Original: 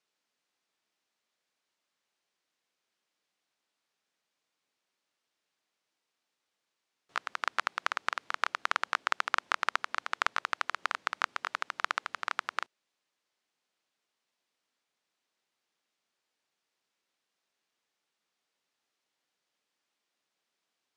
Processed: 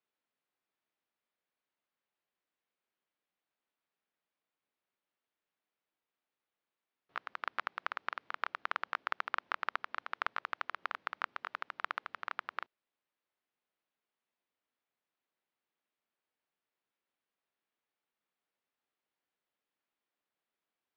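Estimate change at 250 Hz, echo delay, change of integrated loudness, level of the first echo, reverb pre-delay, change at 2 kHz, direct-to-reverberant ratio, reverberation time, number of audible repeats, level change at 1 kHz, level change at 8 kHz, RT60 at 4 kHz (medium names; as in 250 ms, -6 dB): -5.0 dB, no echo, -6.5 dB, no echo, no reverb, -6.5 dB, no reverb, no reverb, no echo, -6.0 dB, under -20 dB, no reverb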